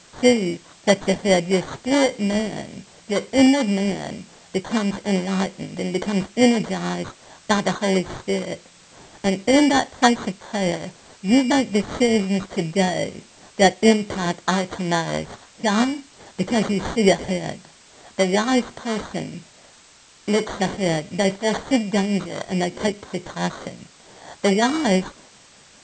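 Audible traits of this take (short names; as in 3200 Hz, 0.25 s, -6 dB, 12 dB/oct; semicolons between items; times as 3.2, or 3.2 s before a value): aliases and images of a low sample rate 2600 Hz, jitter 0%; tremolo triangle 4.7 Hz, depth 55%; a quantiser's noise floor 8-bit, dither triangular; MP2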